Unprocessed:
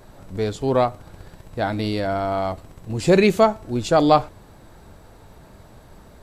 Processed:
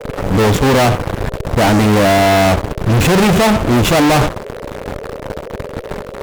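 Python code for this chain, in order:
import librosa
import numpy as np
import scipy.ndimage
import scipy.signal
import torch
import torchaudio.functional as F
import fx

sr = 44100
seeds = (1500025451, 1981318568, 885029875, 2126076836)

y = scipy.signal.medfilt(x, 9)
y = fx.dynamic_eq(y, sr, hz=170.0, q=0.81, threshold_db=-32.0, ratio=4.0, max_db=7)
y = fx.fuzz(y, sr, gain_db=41.0, gate_db=-42.0)
y = fx.dmg_noise_band(y, sr, seeds[0], low_hz=390.0, high_hz=600.0, level_db=-34.0)
y = y * 10.0 ** (3.5 / 20.0)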